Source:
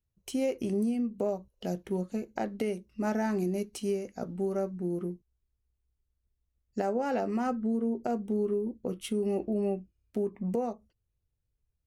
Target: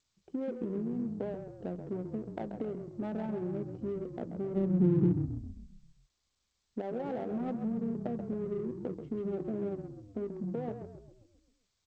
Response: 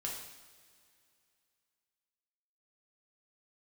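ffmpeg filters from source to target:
-filter_complex "[0:a]acompressor=threshold=-32dB:ratio=6,asplit=3[a][b][c];[a]afade=t=out:st=4.55:d=0.02[d];[b]asubboost=boost=10.5:cutoff=230,afade=t=in:st=4.55:d=0.02,afade=t=out:st=5.12:d=0.02[e];[c]afade=t=in:st=5.12:d=0.02[f];[d][e][f]amix=inputs=3:normalize=0,asplit=3[g][h][i];[g]afade=t=out:st=7.36:d=0.02[j];[h]aecho=1:1:3.6:0.41,afade=t=in:st=7.36:d=0.02,afade=t=out:st=8.18:d=0.02[k];[i]afade=t=in:st=8.18:d=0.02[l];[j][k][l]amix=inputs=3:normalize=0,bandpass=f=340:t=q:w=0.56:csg=0,asplit=8[m][n][o][p][q][r][s][t];[n]adelay=133,afreqshift=-31,volume=-7dB[u];[o]adelay=266,afreqshift=-62,volume=-12.4dB[v];[p]adelay=399,afreqshift=-93,volume=-17.7dB[w];[q]adelay=532,afreqshift=-124,volume=-23.1dB[x];[r]adelay=665,afreqshift=-155,volume=-28.4dB[y];[s]adelay=798,afreqshift=-186,volume=-33.8dB[z];[t]adelay=931,afreqshift=-217,volume=-39.1dB[aa];[m][u][v][w][x][y][z][aa]amix=inputs=8:normalize=0,adynamicsmooth=sensitivity=6:basefreq=590,asplit=3[ab][ac][ad];[ab]afade=t=out:st=9.58:d=0.02[ae];[ac]bandreject=f=60:t=h:w=6,bandreject=f=120:t=h:w=6,bandreject=f=180:t=h:w=6,bandreject=f=240:t=h:w=6,bandreject=f=300:t=h:w=6,bandreject=f=360:t=h:w=6,bandreject=f=420:t=h:w=6,bandreject=f=480:t=h:w=6,bandreject=f=540:t=h:w=6,afade=t=in:st=9.58:d=0.02,afade=t=out:st=10.26:d=0.02[af];[ad]afade=t=in:st=10.26:d=0.02[ag];[ae][af][ag]amix=inputs=3:normalize=0" -ar 16000 -c:a g722

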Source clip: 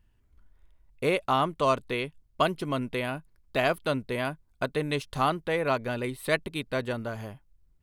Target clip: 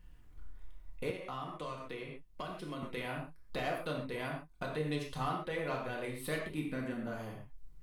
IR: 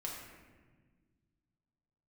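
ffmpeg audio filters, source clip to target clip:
-filter_complex "[0:a]asettb=1/sr,asplit=3[a][b][c];[a]atrim=end=6.544[d];[b]atrim=start=6.54:end=7.07,asetpts=PTS-STARTPTS,afade=t=in:d=0.004:c=qsin,afade=t=out:st=0.526:d=0.004:c=qsin,equalizer=f=250:t=o:w=1:g=9,equalizer=f=500:t=o:w=1:g=-5,equalizer=f=1k:t=o:w=1:g=-4,equalizer=f=2k:t=o:w=1:g=3,equalizer=f=4k:t=o:w=1:g=-10[e];[c]atrim=start=7.066[f];[d][e]acrossfade=d=0.004:c1=hsin:c2=qsin[g];[g][f]acrossfade=d=0.004:c1=qsin:c2=hsin,asoftclip=type=tanh:threshold=-15dB,acompressor=threshold=-54dB:ratio=2[h];[1:a]atrim=start_sample=2205,atrim=end_sample=6174[i];[h][i]afir=irnorm=-1:irlink=0,asettb=1/sr,asplit=3[j][k][l];[j]atrim=end=1.104[m];[k]atrim=start=1.1:end=2.83,asetpts=PTS-STARTPTS,afade=t=in:d=0.004:c=qsin,afade=t=out:st=1.726:d=0.004:c=qsin,acrossover=split=220|1500[n][o][p];[n]acompressor=threshold=-57dB:ratio=4[q];[o]acompressor=threshold=-50dB:ratio=4[r];[p]acompressor=threshold=-58dB:ratio=4[s];[q][r][s]amix=inputs=3:normalize=0[t];[l]atrim=start=2.826[u];[m][t]acrossfade=d=0.004:c1=hsin:c2=qsin[v];[v][u]acrossfade=d=0.004:c1=qsin:c2=hsin,volume=8dB"

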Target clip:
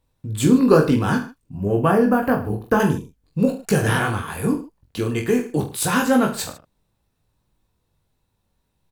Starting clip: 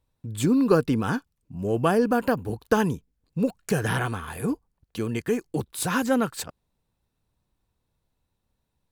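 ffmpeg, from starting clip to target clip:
-filter_complex "[0:a]asettb=1/sr,asplit=3[a][b][c];[a]atrim=end=1.574[d];[b]atrim=start=1.57:end=2.8,asetpts=PTS-STARTPTS,afade=t=in:d=0.004:c=qsin,afade=t=out:st=1.226:d=0.004:c=qsin,equalizer=f=500:t=o:w=1:g=-3,equalizer=f=4k:t=o:w=1:g=-11,equalizer=f=8k:t=o:w=1:g=-9[e];[c]atrim=start=2.796[f];[d][e]acrossfade=d=0.004:c1=hsin:c2=qsin[g];[g][f]acrossfade=d=0.004:c1=qsin:c2=hsin,aecho=1:1:20|44|72.8|107.4|148.8:0.631|0.398|0.251|0.158|0.1,volume=4dB"

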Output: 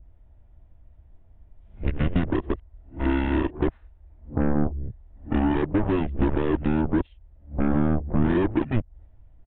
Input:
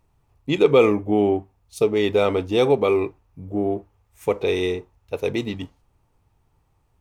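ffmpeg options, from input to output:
-af "areverse,asetrate=32667,aresample=44100,acompressor=threshold=-25dB:ratio=5,aeval=exprs='0.133*(cos(1*acos(clip(val(0)/0.133,-1,1)))-cos(1*PI/2))+0.0376*(cos(7*acos(clip(val(0)/0.133,-1,1)))-cos(7*PI/2))':c=same,aemphasis=mode=reproduction:type=bsi,aresample=8000,aresample=44100,adynamicequalizer=threshold=0.00708:dfrequency=1500:dqfactor=0.7:tfrequency=1500:tqfactor=0.7:attack=5:release=100:ratio=0.375:range=3:mode=cutabove:tftype=highshelf"

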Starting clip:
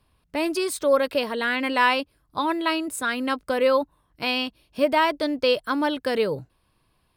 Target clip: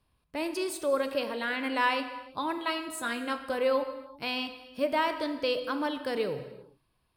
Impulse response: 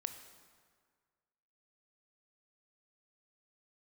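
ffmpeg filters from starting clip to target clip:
-filter_complex "[0:a]asettb=1/sr,asplit=3[a][b][c];[a]atrim=end=2.564[d];[b]atrim=start=2.56:end=3.55,asetpts=PTS-STARTPTS,afade=t=in:d=0.004:c=qsin,afade=t=out:st=0.986:d=0.004:c=qsin,asplit=2[e][f];[f]adelay=17,volume=-7dB[g];[e][g]amix=inputs=2:normalize=0,atrim=end_sample=43659[h];[c]atrim=start=3.546[i];[d][h]acrossfade=d=0.004:c1=hsin:c2=qsin[j];[j][i]acrossfade=d=0.004:c1=qsin:c2=hsin[k];[1:a]atrim=start_sample=2205,afade=t=out:st=0.44:d=0.01,atrim=end_sample=19845[l];[k][l]afir=irnorm=-1:irlink=0,volume=-5.5dB"

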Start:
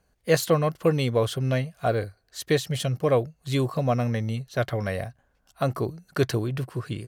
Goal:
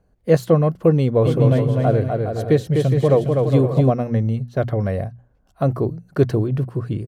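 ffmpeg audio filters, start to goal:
-filter_complex "[0:a]tiltshelf=f=1.1k:g=9,bandreject=f=60:t=h:w=6,bandreject=f=120:t=h:w=6,bandreject=f=180:t=h:w=6,bandreject=f=240:t=h:w=6,asplit=3[a][b][c];[a]afade=t=out:st=1.24:d=0.02[d];[b]aecho=1:1:250|412.5|518.1|586.8|631.4:0.631|0.398|0.251|0.158|0.1,afade=t=in:st=1.24:d=0.02,afade=t=out:st=3.89:d=0.02[e];[c]afade=t=in:st=3.89:d=0.02[f];[d][e][f]amix=inputs=3:normalize=0"

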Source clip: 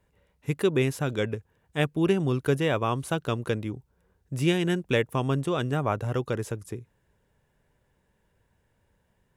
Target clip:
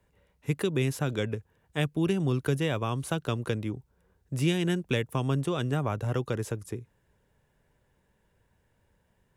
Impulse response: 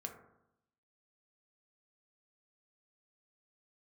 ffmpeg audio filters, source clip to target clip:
-filter_complex "[0:a]acrossover=split=230|3000[a][b][c];[b]acompressor=threshold=-28dB:ratio=6[d];[a][d][c]amix=inputs=3:normalize=0"

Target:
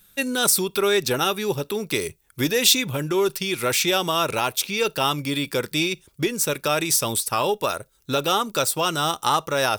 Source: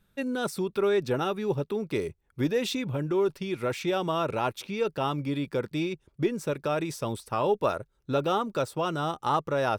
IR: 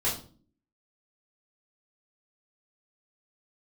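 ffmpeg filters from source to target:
-filter_complex "[0:a]alimiter=limit=-17.5dB:level=0:latency=1:release=354,crystalizer=i=8.5:c=0,asplit=2[a][b];[1:a]atrim=start_sample=2205,atrim=end_sample=3528[c];[b][c]afir=irnorm=-1:irlink=0,volume=-32dB[d];[a][d]amix=inputs=2:normalize=0,volume=2.5dB"

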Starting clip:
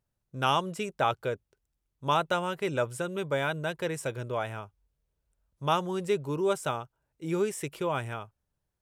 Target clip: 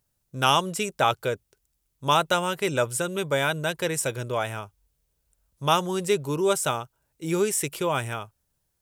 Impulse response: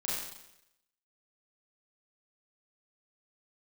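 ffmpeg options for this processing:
-af "highshelf=f=4.1k:g=11.5,volume=4dB"

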